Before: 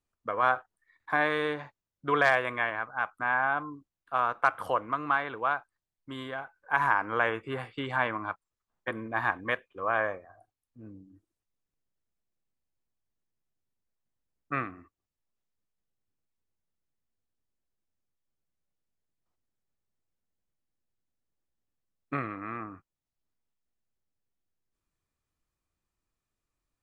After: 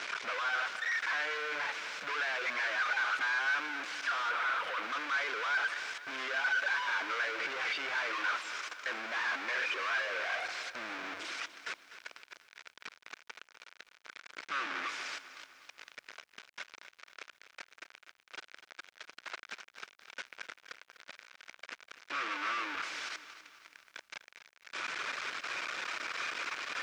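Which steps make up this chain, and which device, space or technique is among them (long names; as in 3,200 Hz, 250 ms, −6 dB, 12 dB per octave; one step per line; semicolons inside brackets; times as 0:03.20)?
reverb reduction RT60 0.91 s
home computer beeper (sign of each sample alone; loudspeaker in its box 630–5,200 Hz, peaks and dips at 790 Hz −5 dB, 1,500 Hz +9 dB, 2,300 Hz +7 dB, 4,400 Hz −3 dB)
0:04.29–0:04.83: parametric band 6,200 Hz −7 dB 1.1 octaves
feedback echo at a low word length 249 ms, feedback 55%, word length 10 bits, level −13 dB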